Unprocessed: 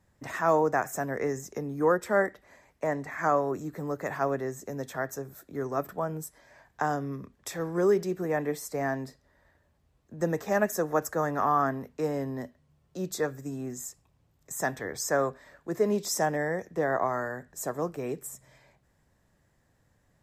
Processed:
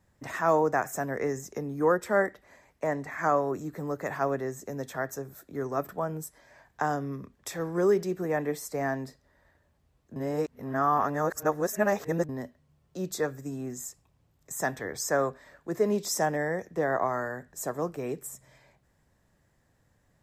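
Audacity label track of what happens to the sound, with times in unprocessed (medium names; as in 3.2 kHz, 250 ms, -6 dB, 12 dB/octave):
10.160000	12.290000	reverse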